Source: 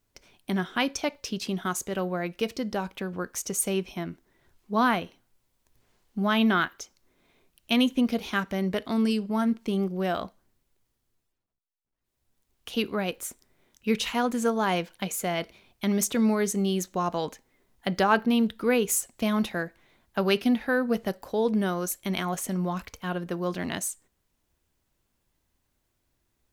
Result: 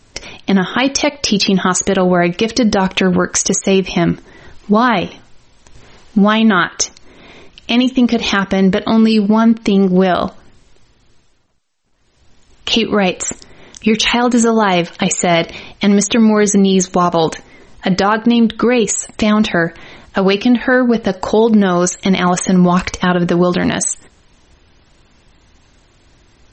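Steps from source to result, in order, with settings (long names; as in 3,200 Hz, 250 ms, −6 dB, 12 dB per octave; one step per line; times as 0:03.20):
downward compressor 12 to 1, threshold −32 dBFS, peak gain reduction 16.5 dB
boost into a limiter +28 dB
level −1.5 dB
MP3 32 kbit/s 48,000 Hz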